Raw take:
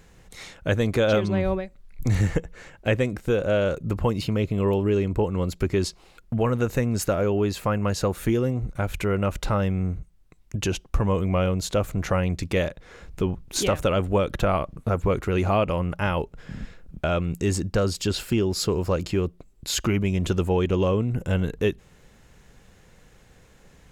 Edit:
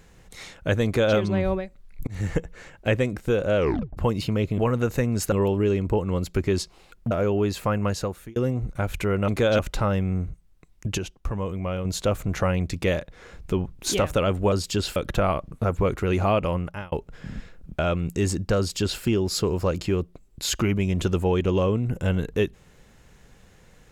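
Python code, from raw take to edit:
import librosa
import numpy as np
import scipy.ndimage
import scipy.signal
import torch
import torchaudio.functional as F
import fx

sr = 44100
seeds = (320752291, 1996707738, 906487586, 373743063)

y = fx.edit(x, sr, fx.duplicate(start_s=0.85, length_s=0.31, to_s=9.28),
    fx.fade_in_span(start_s=2.07, length_s=0.31),
    fx.tape_stop(start_s=3.57, length_s=0.4),
    fx.move(start_s=6.37, length_s=0.74, to_s=4.58),
    fx.fade_out_span(start_s=7.86, length_s=0.5),
    fx.clip_gain(start_s=10.67, length_s=0.87, db=-6.0),
    fx.fade_out_span(start_s=15.8, length_s=0.37),
    fx.duplicate(start_s=17.83, length_s=0.44, to_s=14.21), tone=tone)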